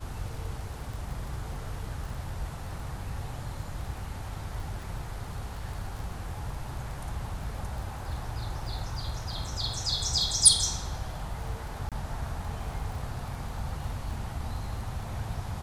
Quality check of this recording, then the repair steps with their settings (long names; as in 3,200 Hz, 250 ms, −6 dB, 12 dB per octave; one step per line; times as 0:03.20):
surface crackle 22 per second −37 dBFS
0:11.89–0:11.92: drop-out 27 ms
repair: click removal
repair the gap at 0:11.89, 27 ms